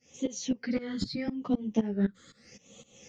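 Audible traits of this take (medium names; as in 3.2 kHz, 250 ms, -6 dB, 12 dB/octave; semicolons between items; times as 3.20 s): phasing stages 8, 0.8 Hz, lowest notch 770–1600 Hz; tremolo saw up 3.9 Hz, depth 95%; a shimmering, thickened sound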